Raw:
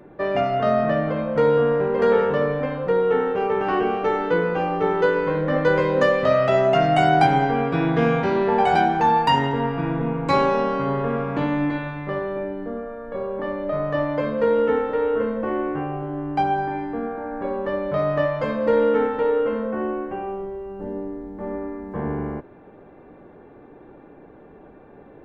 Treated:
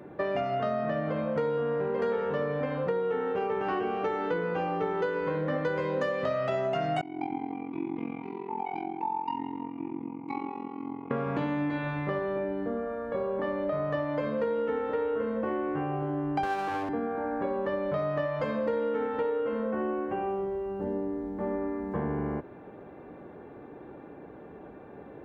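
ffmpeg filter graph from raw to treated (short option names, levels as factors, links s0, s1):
-filter_complex "[0:a]asettb=1/sr,asplit=3[s0][s1][s2];[s0]atrim=end=7.014[s3];[s1]atrim=start=7.01:end=11.11,asetpts=PTS-STARTPTS,afade=t=in:d=0.004:c=qsin,afade=t=out:st=4.096:d=0.004:c=qsin,asplit=3[s4][s5][s6];[s4]bandpass=f=300:t=q:w=8,volume=1[s7];[s5]bandpass=f=870:t=q:w=8,volume=0.501[s8];[s6]bandpass=f=2240:t=q:w=8,volume=0.355[s9];[s7][s8][s9]amix=inputs=3:normalize=0,tremolo=f=44:d=0.947[s10];[s2]atrim=start=11.106[s11];[s3][s10]acrossfade=d=0.004:c1=hsin:c2=qsin[s12];[s12][s11]acrossfade=d=0.004:c1=qsin:c2=hsin,asettb=1/sr,asplit=3[s13][s14][s15];[s13]atrim=end=16.434[s16];[s14]atrim=start=16.43:end=16.89,asetpts=PTS-STARTPTS,afade=t=in:d=0.004:c=qsin,afade=t=out:st=0.456:d=0.004:c=qsin,highpass=f=190:w=0.5412,highpass=f=190:w=1.3066,equalizer=f=690:w=0.44:g=8,aeval=exprs='max(val(0),0)':c=same[s17];[s15]atrim=start=16.886[s18];[s16][s17]acrossfade=d=0.004:c1=hsin:c2=qsin[s19];[s19][s18]acrossfade=d=0.004:c1=qsin:c2=hsin,highpass=56,acompressor=threshold=0.0447:ratio=6"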